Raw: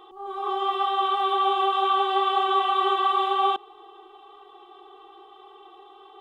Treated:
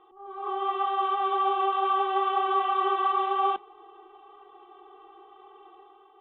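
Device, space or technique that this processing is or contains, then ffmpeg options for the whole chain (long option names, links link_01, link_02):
action camera in a waterproof case: -af "lowpass=frequency=2700:width=0.5412,lowpass=frequency=2700:width=1.3066,dynaudnorm=framelen=120:gausssize=7:maxgain=6dB,volume=-8.5dB" -ar 24000 -c:a aac -b:a 48k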